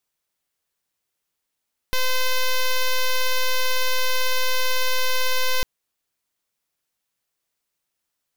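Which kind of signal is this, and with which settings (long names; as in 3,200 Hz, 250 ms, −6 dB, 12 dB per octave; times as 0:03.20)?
pulse wave 513 Hz, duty 6% −19 dBFS 3.70 s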